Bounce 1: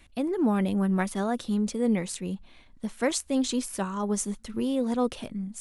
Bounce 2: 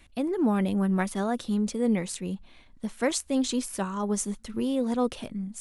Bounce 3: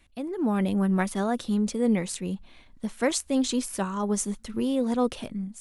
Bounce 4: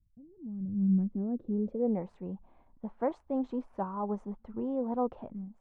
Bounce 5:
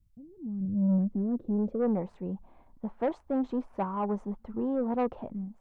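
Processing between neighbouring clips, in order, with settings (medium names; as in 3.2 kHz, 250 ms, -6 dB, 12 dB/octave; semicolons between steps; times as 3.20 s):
no audible change
level rider gain up to 7 dB; trim -5.5 dB
low-pass sweep 130 Hz -> 870 Hz, 0.61–2.07 s; trim -8.5 dB
saturation -25.5 dBFS, distortion -15 dB; trim +4.5 dB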